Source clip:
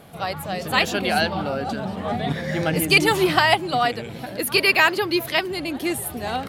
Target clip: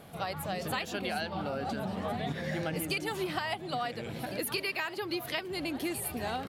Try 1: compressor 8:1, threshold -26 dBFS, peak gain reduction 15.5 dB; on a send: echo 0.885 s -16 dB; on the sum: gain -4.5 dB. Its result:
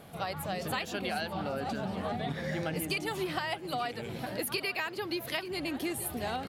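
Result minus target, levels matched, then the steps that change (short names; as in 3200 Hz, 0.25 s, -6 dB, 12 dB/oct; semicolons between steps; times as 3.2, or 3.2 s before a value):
echo 0.519 s early
change: echo 1.404 s -16 dB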